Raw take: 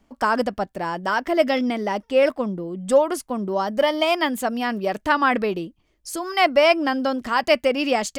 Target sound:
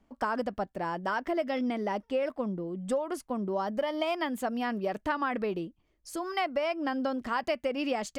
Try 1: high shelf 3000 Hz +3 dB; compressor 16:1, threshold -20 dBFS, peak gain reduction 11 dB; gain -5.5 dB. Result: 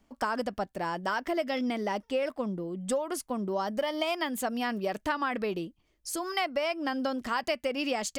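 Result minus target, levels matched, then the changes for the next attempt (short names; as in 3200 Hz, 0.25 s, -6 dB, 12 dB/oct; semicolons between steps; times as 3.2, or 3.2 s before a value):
8000 Hz band +8.0 dB
change: high shelf 3000 Hz -7 dB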